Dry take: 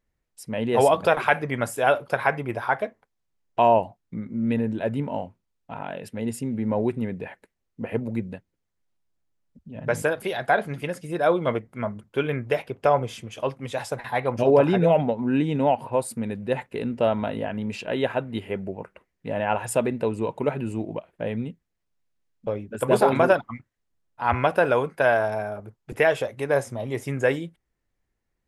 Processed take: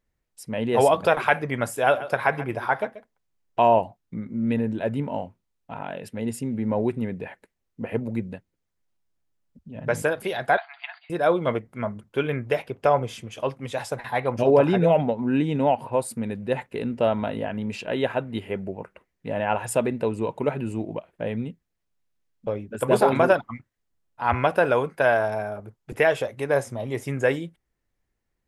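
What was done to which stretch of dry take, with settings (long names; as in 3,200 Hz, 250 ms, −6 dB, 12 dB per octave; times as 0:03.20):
0:01.78–0:03.81: single-tap delay 135 ms −15 dB
0:10.57–0:11.10: linear-phase brick-wall band-pass 640–4,800 Hz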